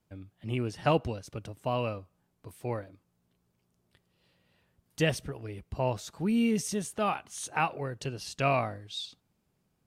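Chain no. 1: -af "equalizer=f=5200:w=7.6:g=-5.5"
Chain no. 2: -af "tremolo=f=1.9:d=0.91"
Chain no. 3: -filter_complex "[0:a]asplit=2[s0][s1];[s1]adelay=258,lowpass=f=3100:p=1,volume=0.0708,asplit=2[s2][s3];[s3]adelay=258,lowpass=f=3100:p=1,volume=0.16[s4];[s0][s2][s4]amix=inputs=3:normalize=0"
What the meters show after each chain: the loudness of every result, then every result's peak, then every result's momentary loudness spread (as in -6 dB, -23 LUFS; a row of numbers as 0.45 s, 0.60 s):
-32.0 LUFS, -36.0 LUFS, -32.0 LUFS; -13.5 dBFS, -15.5 dBFS, -13.5 dBFS; 13 LU, 14 LU, 14 LU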